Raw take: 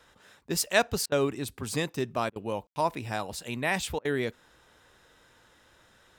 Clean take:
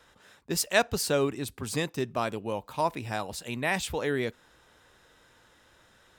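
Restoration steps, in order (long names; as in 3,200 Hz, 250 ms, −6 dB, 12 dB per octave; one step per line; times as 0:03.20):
ambience match 0:02.67–0:02.76
repair the gap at 0:01.06/0:02.30/0:03.99, 58 ms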